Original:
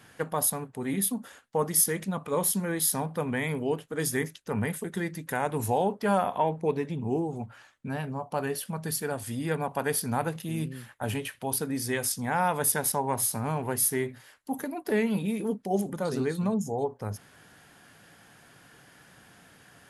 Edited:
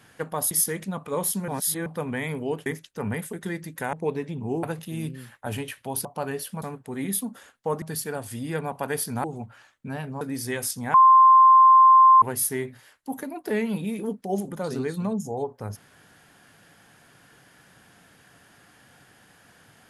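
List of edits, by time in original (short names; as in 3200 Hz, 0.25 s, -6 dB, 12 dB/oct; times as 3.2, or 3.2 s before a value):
0.51–1.71 move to 8.78
2.68–3.06 reverse
3.86–4.17 cut
5.44–6.54 cut
7.24–8.21 swap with 10.2–11.62
12.35–13.63 bleep 1050 Hz -10 dBFS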